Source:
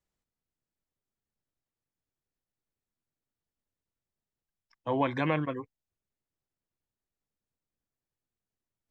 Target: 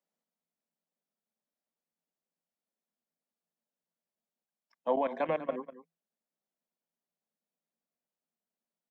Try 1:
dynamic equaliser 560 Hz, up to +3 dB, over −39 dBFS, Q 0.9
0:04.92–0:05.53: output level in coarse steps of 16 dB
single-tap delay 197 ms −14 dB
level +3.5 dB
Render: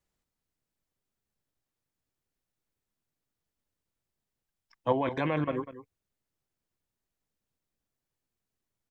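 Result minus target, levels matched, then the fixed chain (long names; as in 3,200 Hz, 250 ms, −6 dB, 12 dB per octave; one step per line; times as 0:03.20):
125 Hz band +14.5 dB
dynamic equaliser 560 Hz, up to +3 dB, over −39 dBFS, Q 0.9
Chebyshev high-pass with heavy ripple 160 Hz, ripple 9 dB
0:04.92–0:05.53: output level in coarse steps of 16 dB
single-tap delay 197 ms −14 dB
level +3.5 dB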